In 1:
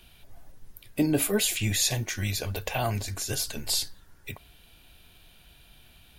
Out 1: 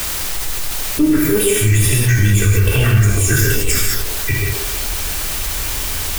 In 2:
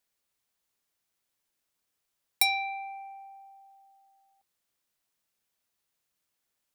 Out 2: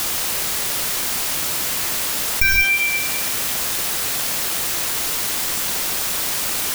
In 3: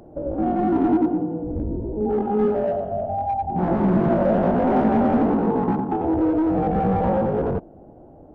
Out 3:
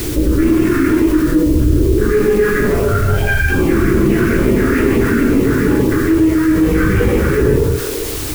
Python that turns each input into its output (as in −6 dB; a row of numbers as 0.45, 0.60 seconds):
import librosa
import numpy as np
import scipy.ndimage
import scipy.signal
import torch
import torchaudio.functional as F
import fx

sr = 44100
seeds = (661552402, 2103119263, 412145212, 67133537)

y = fx.dynamic_eq(x, sr, hz=270.0, q=3.3, threshold_db=-34.0, ratio=4.0, max_db=6)
y = y + 0.64 * np.pad(y, (int(2.6 * sr / 1000.0), 0))[:len(y)]
y = fx.tube_stage(y, sr, drive_db=21.0, bias=0.75)
y = fx.echo_banded(y, sr, ms=133, feedback_pct=57, hz=600.0, wet_db=-5)
y = fx.phaser_stages(y, sr, stages=6, low_hz=690.0, high_hz=2000.0, hz=2.3, feedback_pct=25)
y = fx.rider(y, sr, range_db=10, speed_s=0.5)
y = fx.low_shelf(y, sr, hz=68.0, db=3.0)
y = fx.dereverb_blind(y, sr, rt60_s=0.62)
y = fx.fixed_phaser(y, sr, hz=1800.0, stages=4)
y = fx.rev_gated(y, sr, seeds[0], gate_ms=220, shape='flat', drr_db=-2.5)
y = fx.quant_dither(y, sr, seeds[1], bits=8, dither='triangular')
y = fx.env_flatten(y, sr, amount_pct=50)
y = librosa.util.normalize(y) * 10.0 ** (-1.5 / 20.0)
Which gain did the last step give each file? +12.5, +16.5, +10.5 decibels